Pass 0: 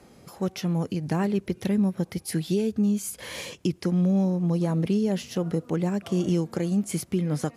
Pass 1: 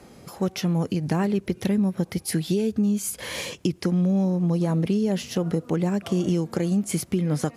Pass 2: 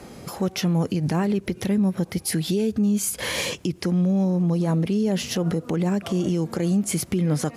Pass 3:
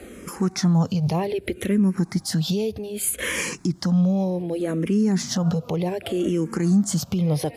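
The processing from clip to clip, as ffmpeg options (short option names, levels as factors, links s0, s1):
-af "acompressor=threshold=0.0562:ratio=2.5,volume=1.68"
-af "alimiter=limit=0.0794:level=0:latency=1:release=112,volume=2.11"
-filter_complex "[0:a]asplit=2[s0][s1];[s1]afreqshift=-0.65[s2];[s0][s2]amix=inputs=2:normalize=1,volume=1.5"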